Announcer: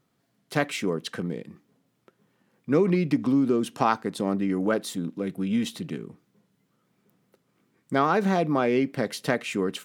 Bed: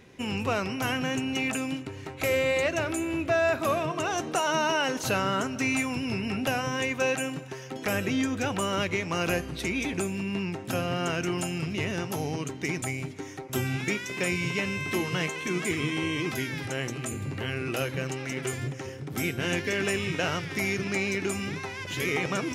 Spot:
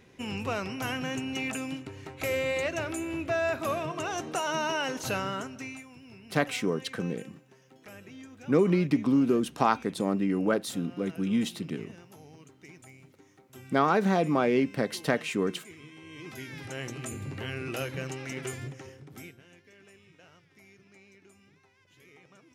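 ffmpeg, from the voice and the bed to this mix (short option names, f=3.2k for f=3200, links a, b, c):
-filter_complex "[0:a]adelay=5800,volume=-1.5dB[a];[1:a]volume=12dB,afade=t=out:st=5.14:d=0.69:silence=0.158489,afade=t=in:st=16.04:d=0.94:silence=0.158489,afade=t=out:st=18.41:d=1.03:silence=0.0595662[b];[a][b]amix=inputs=2:normalize=0"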